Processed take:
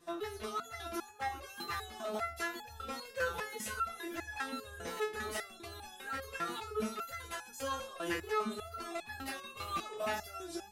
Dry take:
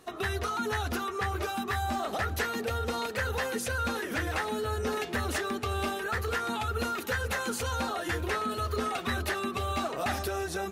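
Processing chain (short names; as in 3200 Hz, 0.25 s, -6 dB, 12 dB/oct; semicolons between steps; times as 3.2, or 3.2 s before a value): wow and flutter 86 cents; stepped resonator 5 Hz 170–850 Hz; gain +7 dB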